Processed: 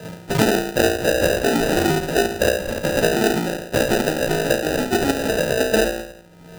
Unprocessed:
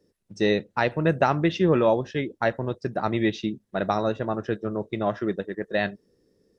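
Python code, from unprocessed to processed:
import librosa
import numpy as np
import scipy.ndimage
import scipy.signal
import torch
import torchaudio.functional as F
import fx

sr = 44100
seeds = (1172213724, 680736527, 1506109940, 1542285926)

p1 = fx.octave_mirror(x, sr, pivot_hz=910.0)
p2 = fx.peak_eq(p1, sr, hz=430.0, db=14.0, octaves=1.4)
p3 = p2 + fx.room_flutter(p2, sr, wall_m=3.0, rt60_s=0.51, dry=0)
p4 = fx.dynamic_eq(p3, sr, hz=1100.0, q=0.86, threshold_db=-26.0, ratio=4.0, max_db=-4)
p5 = fx.level_steps(p4, sr, step_db=11)
p6 = p4 + F.gain(torch.from_numpy(p5), -2.0).numpy()
p7 = fx.sample_hold(p6, sr, seeds[0], rate_hz=1100.0, jitter_pct=0)
p8 = fx.band_squash(p7, sr, depth_pct=100)
y = F.gain(torch.from_numpy(p8), -3.5).numpy()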